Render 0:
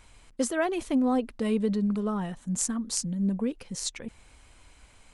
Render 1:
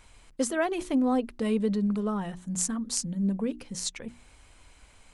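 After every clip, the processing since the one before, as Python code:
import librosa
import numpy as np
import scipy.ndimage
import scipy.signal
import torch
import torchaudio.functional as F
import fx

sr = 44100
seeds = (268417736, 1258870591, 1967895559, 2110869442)

y = fx.hum_notches(x, sr, base_hz=60, count=6)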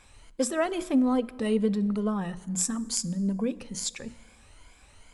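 y = fx.spec_ripple(x, sr, per_octave=1.8, drift_hz=2.3, depth_db=9)
y = fx.rev_plate(y, sr, seeds[0], rt60_s=1.6, hf_ratio=0.65, predelay_ms=0, drr_db=17.5)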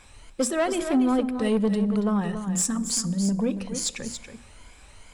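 y = 10.0 ** (-20.5 / 20.0) * np.tanh(x / 10.0 ** (-20.5 / 20.0))
y = y + 10.0 ** (-9.0 / 20.0) * np.pad(y, (int(280 * sr / 1000.0), 0))[:len(y)]
y = y * librosa.db_to_amplitude(4.5)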